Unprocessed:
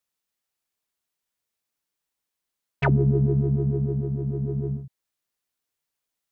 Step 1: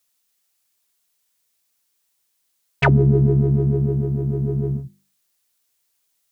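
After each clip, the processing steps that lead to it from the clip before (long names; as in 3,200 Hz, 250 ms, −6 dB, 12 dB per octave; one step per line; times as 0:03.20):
high-shelf EQ 3,100 Hz +10 dB
mains-hum notches 50/100/150/200/250/300/350 Hz
level +5.5 dB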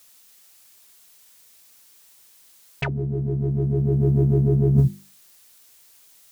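dynamic equaliser 1,100 Hz, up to −5 dB, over −37 dBFS, Q 0.79
compressor whose output falls as the input rises −28 dBFS, ratio −1
level +7.5 dB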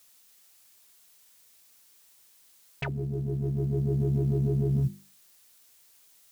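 brickwall limiter −13 dBFS, peak gain reduction 6 dB
log-companded quantiser 8 bits
level −6 dB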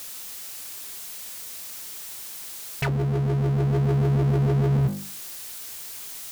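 power curve on the samples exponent 0.5
level +2.5 dB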